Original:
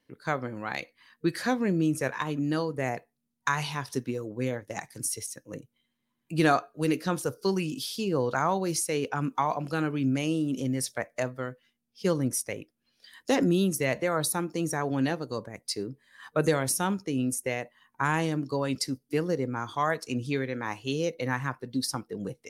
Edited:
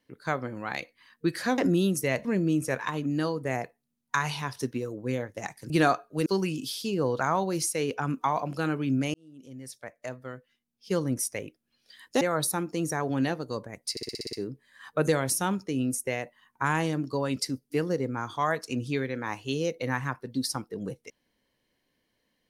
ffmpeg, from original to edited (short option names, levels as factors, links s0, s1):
-filter_complex "[0:a]asplit=14[s0][s1][s2][s3][s4][s5][s6][s7][s8][s9][s10][s11][s12][s13];[s0]atrim=end=1.582[s14];[s1]atrim=start=13.348:end=14.022[s15];[s2]atrim=start=1.578:end=5.032[s16];[s3]atrim=start=6.338:end=6.902[s17];[s4]atrim=start=7.398:end=10.28,asetpts=PTS-STARTPTS,afade=t=out:st=2.878:d=0.004:c=hsin[s18];[s5]atrim=start=10.28:end=13.352,asetpts=PTS-STARTPTS,afade=t=in:d=2.17[s19];[s6]atrim=start=14.018:end=15.782[s20];[s7]atrim=start=15.718:end=15.782[s21];[s8]atrim=start=15.718:end=15.782[s22];[s9]atrim=start=15.718:end=15.782[s23];[s10]atrim=start=15.718:end=15.782[s24];[s11]atrim=start=15.718:end=15.782[s25];[s12]atrim=start=15.718:end=15.782[s26];[s13]atrim=start=15.718[s27];[s14][s15]acrossfade=d=0.004:c1=hsin:c2=hsin[s28];[s28][s16]acrossfade=d=0.004:c1=hsin:c2=hsin[s29];[s29][s17]acrossfade=d=0.004:c1=hsin:c2=hsin[s30];[s18][s19]concat=n=2:v=0:a=1[s31];[s30][s31]acrossfade=d=0.004:c1=hsin:c2=hsin[s32];[s32][s20]acrossfade=d=0.004:c1=hsin:c2=hsin[s33];[s33][s21]acrossfade=d=0.004:c1=hsin:c2=hsin[s34];[s34][s22]acrossfade=d=0.004:c1=hsin:c2=hsin[s35];[s35][s23]acrossfade=d=0.004:c1=hsin:c2=hsin[s36];[s36][s24]acrossfade=d=0.004:c1=hsin:c2=hsin[s37];[s37][s25]acrossfade=d=0.004:c1=hsin:c2=hsin[s38];[s38][s26]acrossfade=d=0.004:c1=hsin:c2=hsin[s39];[s39][s27]acrossfade=d=0.004:c1=hsin:c2=hsin"